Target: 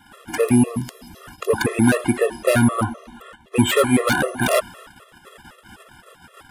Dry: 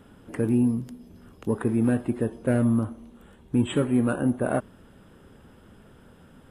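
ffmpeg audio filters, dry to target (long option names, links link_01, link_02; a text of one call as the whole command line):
ffmpeg -i in.wav -filter_complex "[0:a]agate=range=-11dB:threshold=-50dB:ratio=16:detection=peak,asettb=1/sr,asplit=3[link_01][link_02][link_03];[link_01]atrim=end=2.834[link_04];[link_02]atrim=start=2.83:end=3.56,asetpts=PTS-STARTPTS,afade=type=in:duration=0.004:curve=qsin,afade=type=out:start_time=0.726:duration=0.004:curve=qsin,aemphasis=mode=reproduction:type=cd[link_05];[link_03]atrim=start=3.556[link_06];[link_04][link_05]acrossfade=duration=0.004:curve1=hsin:curve2=qsin[link_07];[link_07][link_06]acrossfade=duration=0.004:curve1=qsin:curve2=hsin,acrossover=split=730[link_08][link_09];[link_09]aeval=exprs='0.1*sin(PI/2*3.98*val(0)/0.1)':channel_layout=same[link_10];[link_08][link_10]amix=inputs=2:normalize=0,afftfilt=real='re*gt(sin(2*PI*3.9*pts/sr)*(1-2*mod(floor(b*sr/1024/350),2)),0)':imag='im*gt(sin(2*PI*3.9*pts/sr)*(1-2*mod(floor(b*sr/1024/350),2)),0)':win_size=1024:overlap=0.75,volume=7dB" out.wav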